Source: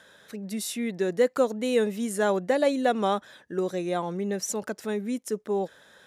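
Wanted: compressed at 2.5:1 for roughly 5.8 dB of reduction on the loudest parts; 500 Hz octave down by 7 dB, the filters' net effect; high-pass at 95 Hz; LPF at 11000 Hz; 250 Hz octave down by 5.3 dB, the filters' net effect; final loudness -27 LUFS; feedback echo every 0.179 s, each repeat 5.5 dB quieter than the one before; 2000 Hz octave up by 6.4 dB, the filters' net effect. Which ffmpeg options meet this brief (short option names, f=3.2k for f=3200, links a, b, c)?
-af "highpass=95,lowpass=11k,equalizer=f=250:t=o:g=-4.5,equalizer=f=500:t=o:g=-7.5,equalizer=f=2k:t=o:g=8.5,acompressor=threshold=-30dB:ratio=2.5,aecho=1:1:179|358|537|716|895|1074|1253:0.531|0.281|0.149|0.079|0.0419|0.0222|0.0118,volume=5.5dB"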